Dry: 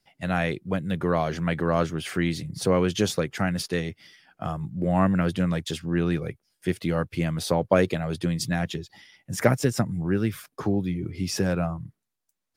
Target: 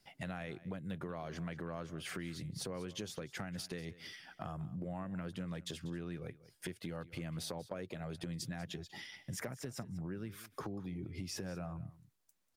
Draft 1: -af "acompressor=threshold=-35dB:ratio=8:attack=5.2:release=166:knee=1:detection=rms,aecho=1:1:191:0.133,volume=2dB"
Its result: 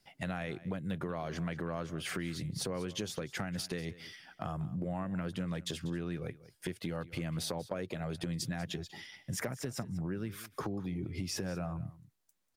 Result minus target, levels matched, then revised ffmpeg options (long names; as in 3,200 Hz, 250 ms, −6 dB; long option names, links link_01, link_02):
downward compressor: peak gain reduction −5 dB
-af "acompressor=threshold=-41dB:ratio=8:attack=5.2:release=166:knee=1:detection=rms,aecho=1:1:191:0.133,volume=2dB"